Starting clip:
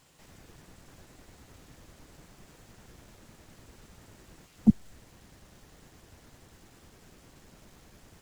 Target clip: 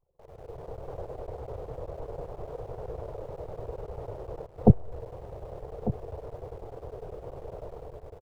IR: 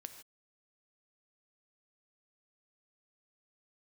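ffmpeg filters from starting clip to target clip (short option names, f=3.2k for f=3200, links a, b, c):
-filter_complex "[0:a]anlmdn=0.000251,firequalizer=gain_entry='entry(120,0);entry(230,-18);entry(450,12);entry(1700,-16);entry(7300,-29)':delay=0.05:min_phase=1,dynaudnorm=f=220:g=5:m=12dB,aecho=1:1:1197:0.224,asplit=2[a][b];[b]aeval=exprs='val(0)*gte(abs(val(0)),0.00376)':c=same,volume=-9.5dB[c];[a][c]amix=inputs=2:normalize=0"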